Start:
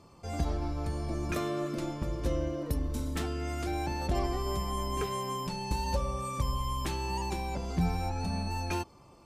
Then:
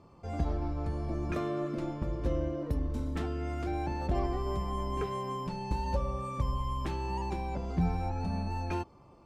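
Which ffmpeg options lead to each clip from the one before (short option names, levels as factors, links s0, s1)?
-af "lowpass=f=1600:p=1"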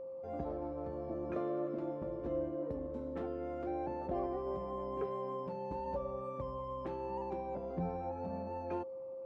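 -af "bandpass=f=510:t=q:w=0.81:csg=0,aeval=exprs='val(0)+0.01*sin(2*PI*530*n/s)':c=same,volume=0.794"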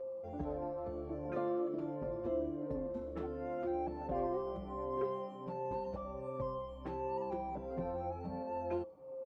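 -filter_complex "[0:a]asplit=2[s0][s1];[s1]adelay=5.3,afreqshift=-1.4[s2];[s0][s2]amix=inputs=2:normalize=1,volume=1.41"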